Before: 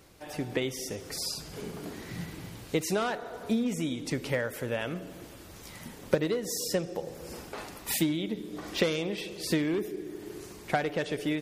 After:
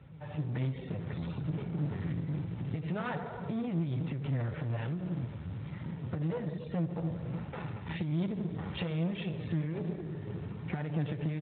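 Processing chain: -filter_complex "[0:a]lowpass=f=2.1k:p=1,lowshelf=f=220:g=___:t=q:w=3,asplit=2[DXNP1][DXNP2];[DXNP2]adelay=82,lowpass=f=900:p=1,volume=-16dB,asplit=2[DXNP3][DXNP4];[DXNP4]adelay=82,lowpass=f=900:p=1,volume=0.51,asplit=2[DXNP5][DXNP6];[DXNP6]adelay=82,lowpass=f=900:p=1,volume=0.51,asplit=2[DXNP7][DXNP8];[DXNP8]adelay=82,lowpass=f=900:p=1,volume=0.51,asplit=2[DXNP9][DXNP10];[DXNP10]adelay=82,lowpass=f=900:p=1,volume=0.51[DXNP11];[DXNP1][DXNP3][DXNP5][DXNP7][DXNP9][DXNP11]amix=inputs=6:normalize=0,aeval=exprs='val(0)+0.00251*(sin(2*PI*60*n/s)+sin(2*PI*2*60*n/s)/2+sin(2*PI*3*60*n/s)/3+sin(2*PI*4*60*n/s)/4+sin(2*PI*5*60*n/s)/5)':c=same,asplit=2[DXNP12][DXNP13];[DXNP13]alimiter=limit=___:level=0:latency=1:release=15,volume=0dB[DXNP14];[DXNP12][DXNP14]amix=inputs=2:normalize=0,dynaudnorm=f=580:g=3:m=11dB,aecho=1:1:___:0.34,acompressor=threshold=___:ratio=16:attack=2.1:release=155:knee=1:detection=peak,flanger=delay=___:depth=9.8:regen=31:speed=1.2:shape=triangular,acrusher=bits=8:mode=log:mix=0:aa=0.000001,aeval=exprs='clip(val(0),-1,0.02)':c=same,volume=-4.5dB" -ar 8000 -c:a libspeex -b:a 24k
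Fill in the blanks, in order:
12, -14dB, 2.2, -18dB, 2.8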